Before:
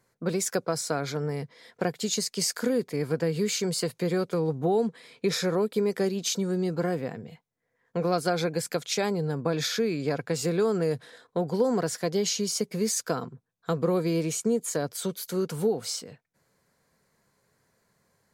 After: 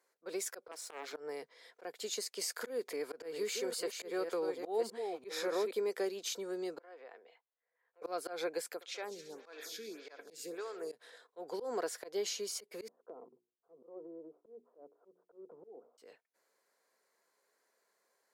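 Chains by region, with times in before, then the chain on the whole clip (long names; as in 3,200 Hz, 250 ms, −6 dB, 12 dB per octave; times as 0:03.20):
0:00.71–0:01.13: mu-law and A-law mismatch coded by A + high-pass filter 270 Hz + highs frequency-modulated by the lows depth 0.8 ms
0:02.61–0:05.72: delay that plays each chunk backwards 573 ms, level −8 dB + upward compression, threshold −27 dBFS
0:06.79–0:08.02: high-frequency loss of the air 200 metres + downward compressor, threshold −34 dBFS + high-pass filter 570 Hz
0:08.74–0:10.92: parametric band 620 Hz −7.5 dB 2.4 octaves + echo machine with several playback heads 67 ms, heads first and third, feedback 70%, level −17 dB + phaser with staggered stages 1.7 Hz
0:12.88–0:15.98: Bessel low-pass filter 570 Hz, order 8 + downward compressor 4 to 1, threshold −36 dBFS + mains-hum notches 60/120/180/240/300/360/420 Hz
whole clip: high-pass filter 360 Hz 24 dB per octave; dynamic equaliser 6,000 Hz, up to −5 dB, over −44 dBFS, Q 0.88; volume swells 144 ms; level −6.5 dB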